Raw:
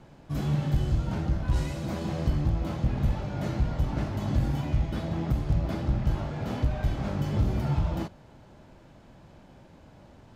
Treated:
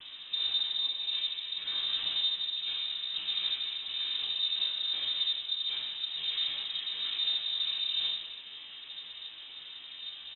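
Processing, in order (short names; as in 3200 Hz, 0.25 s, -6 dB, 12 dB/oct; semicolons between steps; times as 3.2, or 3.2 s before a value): bell 300 Hz -14 dB 0.56 oct; reverse; compressor, threshold -31 dBFS, peak gain reduction 11.5 dB; reverse; limiter -28 dBFS, peak gain reduction 4 dB; upward compressor, threshold -40 dBFS; noise vocoder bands 16; air absorption 190 m; doubler 13 ms -4.5 dB; non-linear reverb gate 0.43 s falling, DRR -2.5 dB; inverted band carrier 3800 Hz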